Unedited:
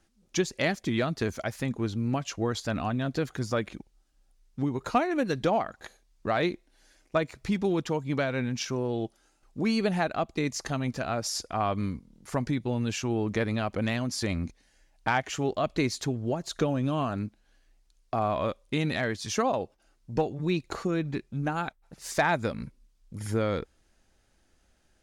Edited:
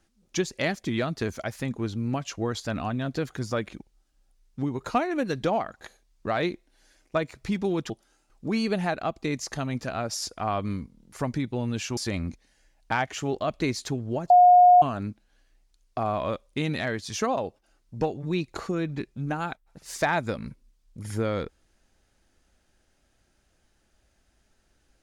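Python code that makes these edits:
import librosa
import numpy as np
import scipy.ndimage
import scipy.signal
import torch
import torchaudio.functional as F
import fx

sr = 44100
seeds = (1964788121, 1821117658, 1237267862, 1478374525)

y = fx.edit(x, sr, fx.cut(start_s=7.9, length_s=1.13),
    fx.cut(start_s=13.1, length_s=1.03),
    fx.bleep(start_s=16.46, length_s=0.52, hz=718.0, db=-11.0), tone=tone)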